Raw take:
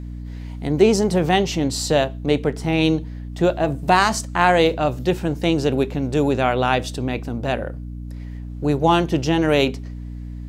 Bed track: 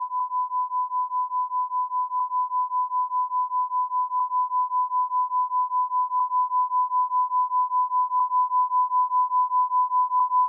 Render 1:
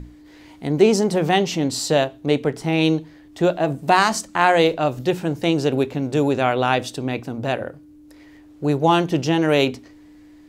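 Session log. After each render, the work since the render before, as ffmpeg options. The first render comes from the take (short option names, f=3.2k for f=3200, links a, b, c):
-af "bandreject=f=60:t=h:w=6,bandreject=f=120:t=h:w=6,bandreject=f=180:t=h:w=6,bandreject=f=240:t=h:w=6"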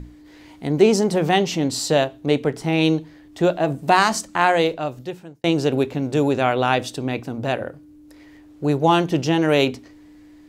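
-filter_complex "[0:a]asplit=2[a][b];[a]atrim=end=5.44,asetpts=PTS-STARTPTS,afade=t=out:st=4.33:d=1.11[c];[b]atrim=start=5.44,asetpts=PTS-STARTPTS,afade=t=in:d=0.004:c=hsin[d];[c][d]concat=n=2:v=0:a=1"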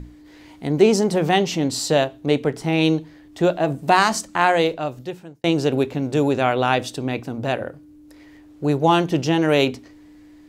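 -af anull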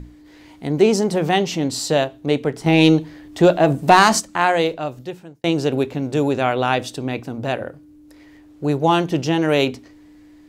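-filter_complex "[0:a]asettb=1/sr,asplit=3[a][b][c];[a]atrim=end=2.664[d];[b]atrim=start=2.66:end=4.2,asetpts=PTS-STARTPTS,afade=t=in:d=0.004:c=qsin,afade=t=out:st=1.536:d=0.004:c=qsin,acontrast=56[e];[c]atrim=start=4.196[f];[d][e]acrossfade=d=0.004:c1=hsin:c2=qsin[g];[g][f]acrossfade=d=0.004:c1=qsin:c2=hsin"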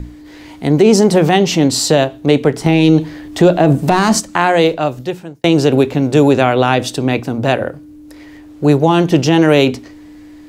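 -filter_complex "[0:a]acrossover=split=400[a][b];[b]acompressor=threshold=-19dB:ratio=6[c];[a][c]amix=inputs=2:normalize=0,alimiter=level_in=9.5dB:limit=-1dB:release=50:level=0:latency=1"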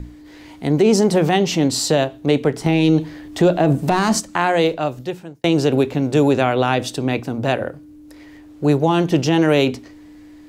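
-af "volume=-5dB"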